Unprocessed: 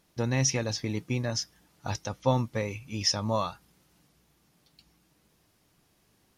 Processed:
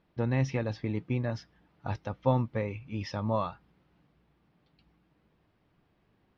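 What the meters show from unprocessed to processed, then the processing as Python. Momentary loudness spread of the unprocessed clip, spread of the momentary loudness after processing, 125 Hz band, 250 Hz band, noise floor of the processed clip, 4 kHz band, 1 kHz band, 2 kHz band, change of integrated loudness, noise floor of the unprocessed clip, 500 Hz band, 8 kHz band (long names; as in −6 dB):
10 LU, 10 LU, 0.0 dB, −0.5 dB, −71 dBFS, −16.5 dB, −1.5 dB, −4.0 dB, −2.5 dB, −69 dBFS, −1.0 dB, below −20 dB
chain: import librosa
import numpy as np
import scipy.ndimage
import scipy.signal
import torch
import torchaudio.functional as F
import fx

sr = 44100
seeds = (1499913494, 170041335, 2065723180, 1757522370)

y = fx.air_absorb(x, sr, metres=390.0)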